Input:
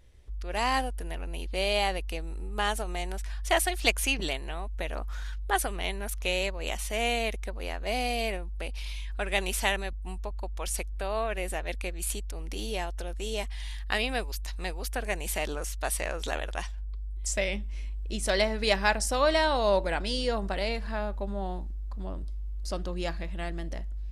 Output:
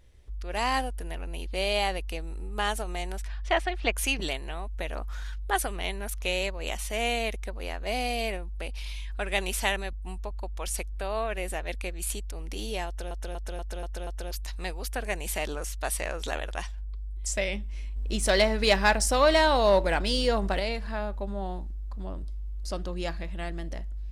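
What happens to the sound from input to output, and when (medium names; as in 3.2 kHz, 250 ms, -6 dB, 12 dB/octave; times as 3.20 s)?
3.27–3.95 s: low-pass 4.4 kHz -> 2.2 kHz
12.87 s: stutter in place 0.24 s, 6 plays
17.96–20.60 s: waveshaping leveller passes 1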